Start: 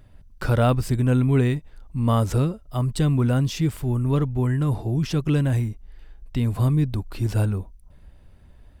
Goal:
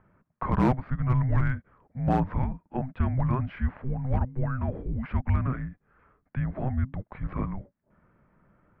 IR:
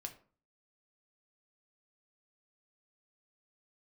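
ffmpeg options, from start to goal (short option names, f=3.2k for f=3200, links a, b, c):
-af "highpass=f=240:t=q:w=0.5412,highpass=f=240:t=q:w=1.307,lowpass=f=2.2k:t=q:w=0.5176,lowpass=f=2.2k:t=q:w=0.7071,lowpass=f=2.2k:t=q:w=1.932,afreqshift=-390,aemphasis=mode=production:type=50kf,asoftclip=type=hard:threshold=-17.5dB,volume=1.5dB"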